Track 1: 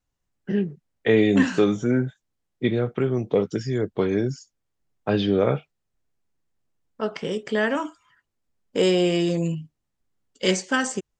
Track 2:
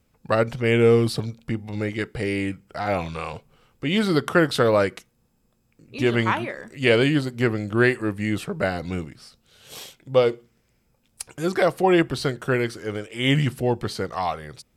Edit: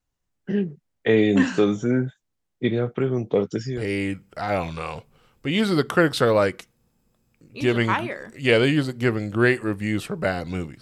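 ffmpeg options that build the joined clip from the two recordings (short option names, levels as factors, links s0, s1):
-filter_complex "[0:a]apad=whole_dur=10.81,atrim=end=10.81,atrim=end=3.91,asetpts=PTS-STARTPTS[s0];[1:a]atrim=start=2.03:end=9.19,asetpts=PTS-STARTPTS[s1];[s0][s1]acrossfade=d=0.26:c1=tri:c2=tri"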